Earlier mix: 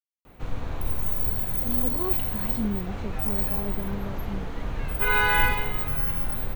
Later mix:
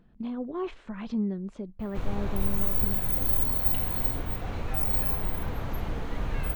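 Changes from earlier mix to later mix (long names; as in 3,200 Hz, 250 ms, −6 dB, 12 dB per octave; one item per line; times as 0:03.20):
speech: entry −1.45 s
background: entry +1.55 s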